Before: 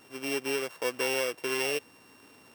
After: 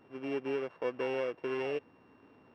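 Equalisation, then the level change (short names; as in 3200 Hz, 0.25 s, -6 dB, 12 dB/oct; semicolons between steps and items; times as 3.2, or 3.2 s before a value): tape spacing loss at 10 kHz 44 dB; 0.0 dB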